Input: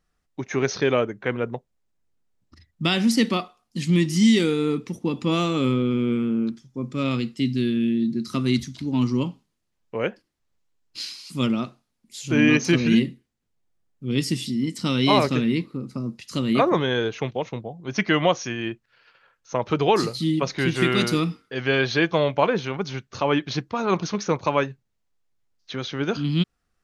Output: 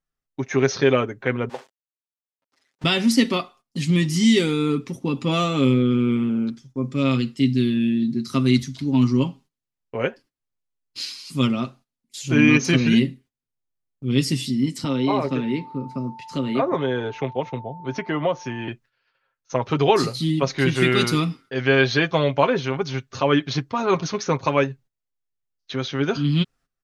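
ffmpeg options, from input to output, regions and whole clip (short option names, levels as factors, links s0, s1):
-filter_complex "[0:a]asettb=1/sr,asplit=3[s0][s1][s2];[s0]atrim=end=1.494[s3];[s1]atrim=start=1.49:end=2.84,asetpts=PTS-STARTPTS,afade=t=in:d=0.004:c=qsin,afade=t=out:st=1.346:d=0.004:c=qsin,aeval=exprs='val(0)+0.5*0.0266*sgn(val(0))':c=same,agate=range=0.0224:threshold=0.0316:ratio=3:release=100:detection=peak,highpass=520,lowpass=7300[s4];[s2]atrim=start=2.836[s5];[s3][s4]acrossfade=d=0.004:c1=hsin:c2=qsin[s6];[s6][s5]acrossfade=d=0.004:c1=qsin:c2=hsin,asettb=1/sr,asplit=3[s7][s8][s9];[s7]atrim=end=14.844[s10];[s8]atrim=start=14.84:end=18.68,asetpts=PTS-STARTPTS,afade=t=in:d=0.004:c=qsin,afade=t=out:st=3.836:d=0.004:c=qsin,aeval=exprs='val(0)+0.0141*sin(2*PI*890*n/s)':c=same,acrossover=split=280|1100[s11][s12][s13];[s11]acompressor=threshold=0.0224:ratio=4[s14];[s12]acompressor=threshold=0.0794:ratio=4[s15];[s13]acompressor=threshold=0.02:ratio=4[s16];[s14][s15][s16]amix=inputs=3:normalize=0,lowpass=f=2700:p=1[s17];[s9]atrim=start=18.676[s18];[s10][s17]acrossfade=d=0.004:c1=hsin:c2=qsin[s19];[s19][s18]acrossfade=d=0.004:c1=qsin:c2=hsin,agate=range=0.178:threshold=0.00355:ratio=16:detection=peak,aecho=1:1:7.5:0.53,volume=1.12"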